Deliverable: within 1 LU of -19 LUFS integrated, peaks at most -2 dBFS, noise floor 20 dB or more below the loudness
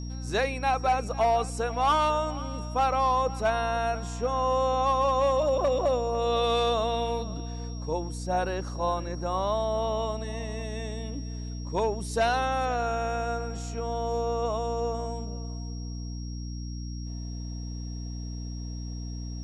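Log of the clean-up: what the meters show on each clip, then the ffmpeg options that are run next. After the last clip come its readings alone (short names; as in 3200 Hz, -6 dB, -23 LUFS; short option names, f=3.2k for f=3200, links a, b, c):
hum 60 Hz; harmonics up to 300 Hz; hum level -33 dBFS; steady tone 5600 Hz; tone level -47 dBFS; loudness -29.0 LUFS; peak -15.5 dBFS; loudness target -19.0 LUFS
-> -af "bandreject=f=60:t=h:w=6,bandreject=f=120:t=h:w=6,bandreject=f=180:t=h:w=6,bandreject=f=240:t=h:w=6,bandreject=f=300:t=h:w=6"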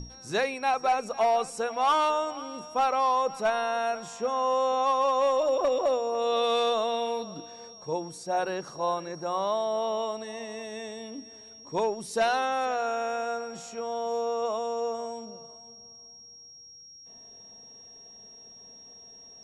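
hum none; steady tone 5600 Hz; tone level -47 dBFS
-> -af "bandreject=f=5.6k:w=30"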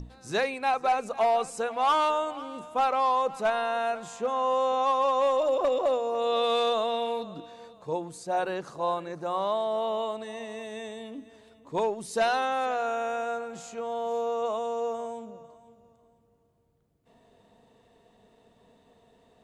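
steady tone none; loudness -28.0 LUFS; peak -17.5 dBFS; loudness target -19.0 LUFS
-> -af "volume=9dB"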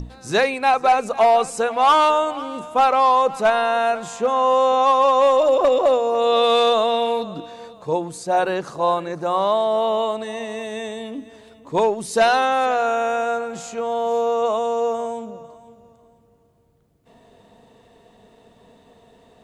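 loudness -19.0 LUFS; peak -8.5 dBFS; noise floor -55 dBFS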